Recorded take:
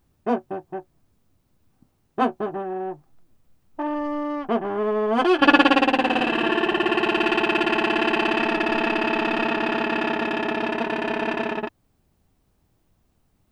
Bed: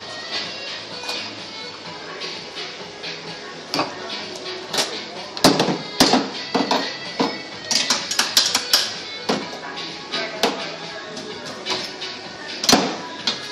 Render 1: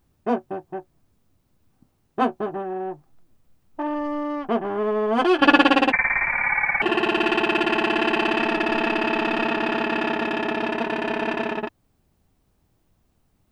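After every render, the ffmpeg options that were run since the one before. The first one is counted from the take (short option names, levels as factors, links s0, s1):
-filter_complex "[0:a]asettb=1/sr,asplit=3[s0][s1][s2];[s0]atrim=end=5.924[s3];[s1]atrim=start=5.92:end=6.82,asetpts=PTS-STARTPTS,afade=t=in:d=0.004:c=qsin,afade=t=out:st=0.896:d=0.004:c=qsin,lowpass=f=2200:t=q:w=0.5098,lowpass=f=2200:t=q:w=0.6013,lowpass=f=2200:t=q:w=0.9,lowpass=f=2200:t=q:w=2.563,afreqshift=-2600[s4];[s2]atrim=start=6.816[s5];[s3][s4]acrossfade=d=0.004:c1=hsin:c2=qsin[s6];[s6][s5]acrossfade=d=0.004:c1=qsin:c2=hsin"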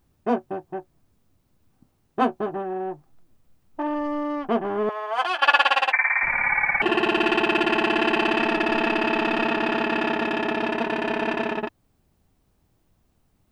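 -filter_complex "[0:a]asettb=1/sr,asplit=3[s0][s1][s2];[s0]atrim=end=4.894[s3];[s1]atrim=start=4.89:end=6.23,asetpts=PTS-STARTPTS,afade=t=in:d=0.004:c=qsin,afade=t=out:st=1.336:d=0.004:c=qsin,highpass=f=690:w=0.5412,highpass=f=690:w=1.3066[s4];[s2]atrim=start=6.226[s5];[s3][s4]acrossfade=d=0.004:c1=hsin:c2=qsin[s6];[s6][s5]acrossfade=d=0.004:c1=qsin:c2=hsin"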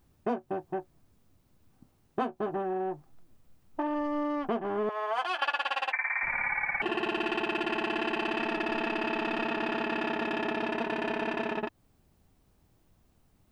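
-af "acompressor=threshold=0.0398:ratio=5"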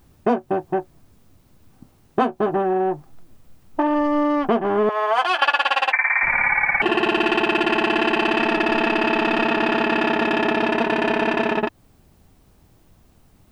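-af "volume=3.76"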